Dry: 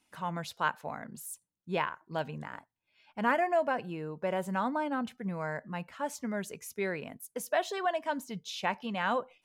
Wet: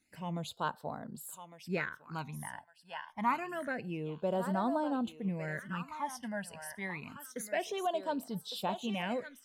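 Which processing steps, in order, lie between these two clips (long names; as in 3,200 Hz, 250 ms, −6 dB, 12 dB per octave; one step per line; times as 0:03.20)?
feedback echo with a high-pass in the loop 1,156 ms, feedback 29%, high-pass 920 Hz, level −6.5 dB
all-pass phaser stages 12, 0.27 Hz, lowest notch 380–2,300 Hz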